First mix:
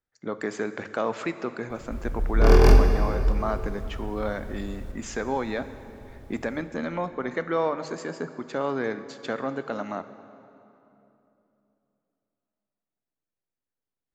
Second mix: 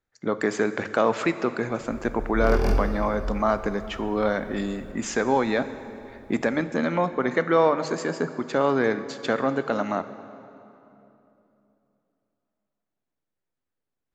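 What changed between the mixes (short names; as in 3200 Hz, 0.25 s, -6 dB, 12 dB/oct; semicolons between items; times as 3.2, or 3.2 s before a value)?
speech +6.0 dB; background -8.0 dB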